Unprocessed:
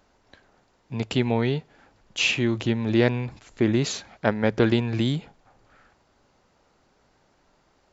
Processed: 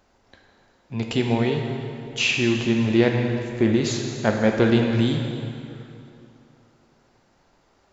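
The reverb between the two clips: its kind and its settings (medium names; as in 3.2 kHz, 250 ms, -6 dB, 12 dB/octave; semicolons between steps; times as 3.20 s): plate-style reverb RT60 2.7 s, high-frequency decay 0.8×, DRR 2 dB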